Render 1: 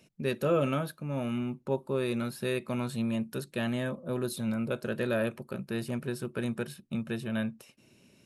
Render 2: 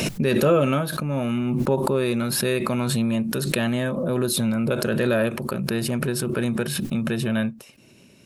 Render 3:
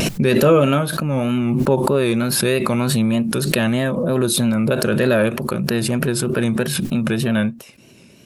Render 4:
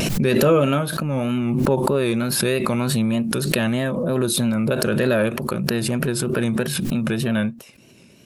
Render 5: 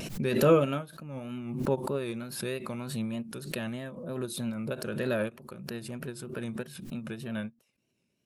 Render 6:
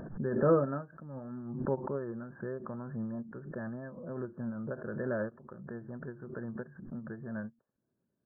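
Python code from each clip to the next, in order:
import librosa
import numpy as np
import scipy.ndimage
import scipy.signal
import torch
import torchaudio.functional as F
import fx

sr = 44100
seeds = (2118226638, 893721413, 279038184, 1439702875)

y1 = fx.pre_swell(x, sr, db_per_s=21.0)
y1 = y1 * librosa.db_to_amplitude(7.5)
y2 = fx.vibrato(y1, sr, rate_hz=3.2, depth_cents=70.0)
y2 = y2 * librosa.db_to_amplitude(5.0)
y3 = fx.pre_swell(y2, sr, db_per_s=41.0)
y3 = y3 * librosa.db_to_amplitude(-3.0)
y4 = fx.upward_expand(y3, sr, threshold_db=-29.0, expansion=2.5)
y4 = y4 * librosa.db_to_amplitude(-3.5)
y5 = fx.brickwall_lowpass(y4, sr, high_hz=1800.0)
y5 = y5 * librosa.db_to_amplitude(-4.0)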